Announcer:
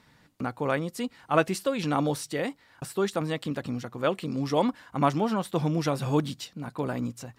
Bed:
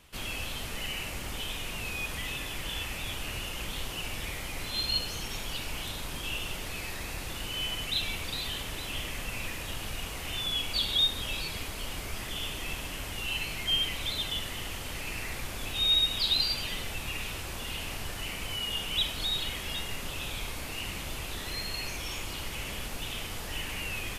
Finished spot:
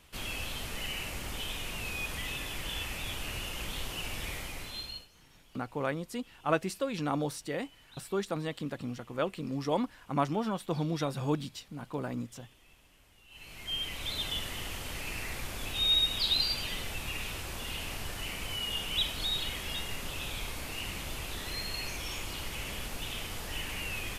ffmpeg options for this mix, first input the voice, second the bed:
-filter_complex "[0:a]adelay=5150,volume=-5.5dB[a];[1:a]volume=22dB,afade=t=out:st=4.35:d=0.73:silence=0.0668344,afade=t=in:st=13.29:d=0.98:silence=0.0668344[b];[a][b]amix=inputs=2:normalize=0"

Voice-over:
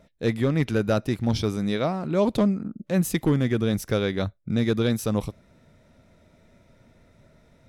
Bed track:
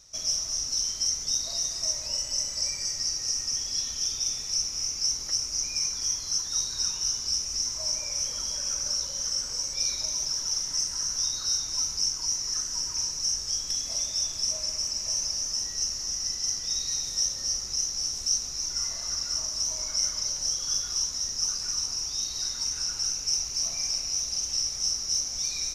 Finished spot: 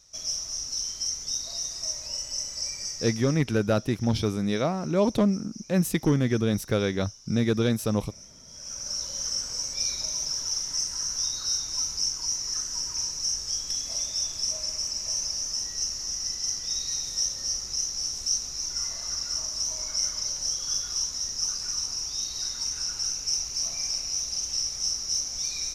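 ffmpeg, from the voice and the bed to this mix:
-filter_complex "[0:a]adelay=2800,volume=-1dB[a];[1:a]volume=15dB,afade=t=out:st=2.88:d=0.56:silence=0.16788,afade=t=in:st=8.47:d=0.67:silence=0.125893[b];[a][b]amix=inputs=2:normalize=0"

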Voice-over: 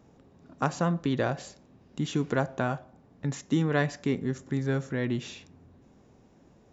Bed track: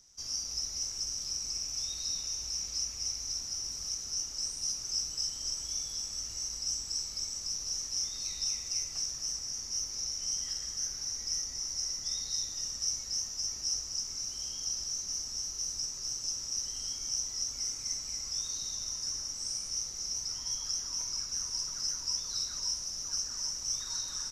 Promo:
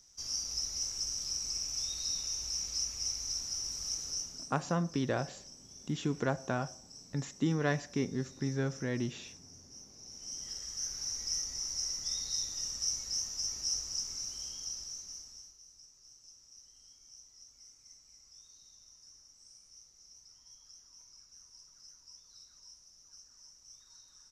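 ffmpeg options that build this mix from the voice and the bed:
-filter_complex "[0:a]adelay=3900,volume=-5dB[a];[1:a]volume=16dB,afade=t=out:st=4.05:d=0.48:silence=0.141254,afade=t=in:st=10:d=1.05:silence=0.149624,afade=t=out:st=13.98:d=1.61:silence=0.0944061[b];[a][b]amix=inputs=2:normalize=0"

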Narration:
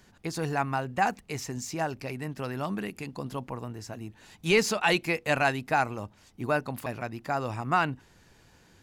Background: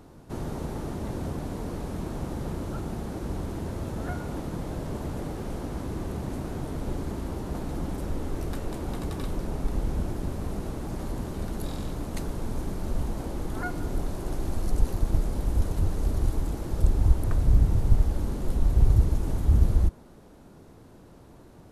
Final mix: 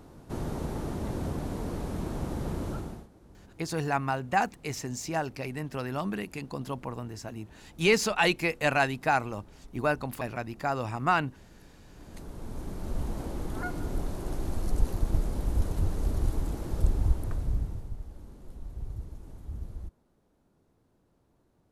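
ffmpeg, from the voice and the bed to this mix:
-filter_complex "[0:a]adelay=3350,volume=0dB[a];[1:a]volume=19.5dB,afade=t=out:st=2.69:d=0.39:silence=0.0794328,afade=t=in:st=11.86:d=1.28:silence=0.1,afade=t=out:st=16.76:d=1.16:silence=0.158489[b];[a][b]amix=inputs=2:normalize=0"

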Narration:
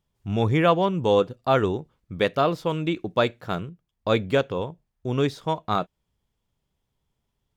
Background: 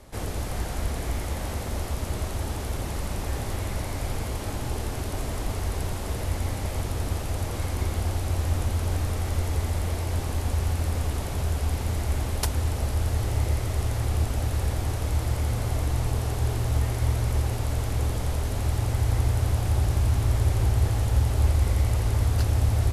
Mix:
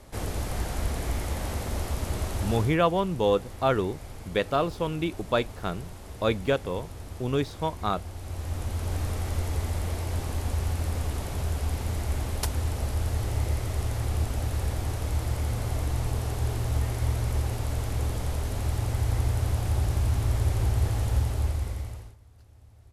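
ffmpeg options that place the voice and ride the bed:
-filter_complex "[0:a]adelay=2150,volume=-3.5dB[a];[1:a]volume=9dB,afade=t=out:st=2.55:d=0.22:silence=0.266073,afade=t=in:st=8.13:d=0.92:silence=0.334965,afade=t=out:st=21.13:d=1.03:silence=0.0354813[b];[a][b]amix=inputs=2:normalize=0"

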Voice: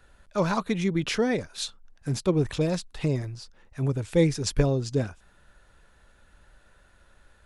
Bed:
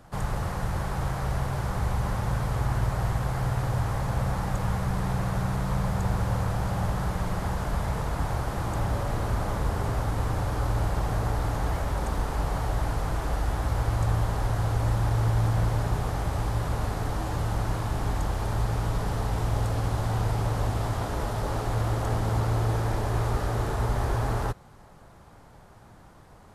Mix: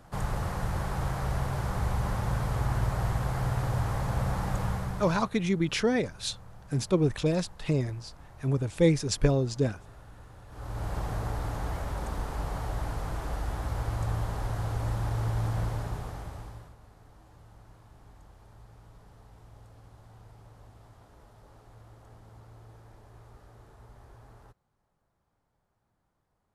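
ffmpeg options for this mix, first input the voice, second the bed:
-filter_complex "[0:a]adelay=4650,volume=-1dB[a];[1:a]volume=15.5dB,afade=t=out:st=4.6:d=0.71:silence=0.0891251,afade=t=in:st=10.48:d=0.48:silence=0.133352,afade=t=out:st=15.61:d=1.14:silence=0.0944061[b];[a][b]amix=inputs=2:normalize=0"

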